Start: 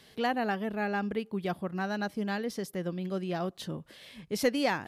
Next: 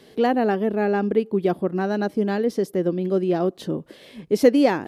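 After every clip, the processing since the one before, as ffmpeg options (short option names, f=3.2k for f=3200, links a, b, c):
-af "equalizer=f=360:t=o:w=1.8:g=14,volume=1.5dB"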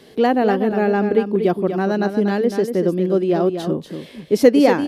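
-af "aecho=1:1:240:0.398,volume=3.5dB"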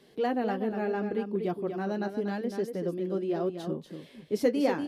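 -af "flanger=delay=4.9:depth=4.6:regen=-49:speed=0.79:shape=triangular,volume=-8.5dB"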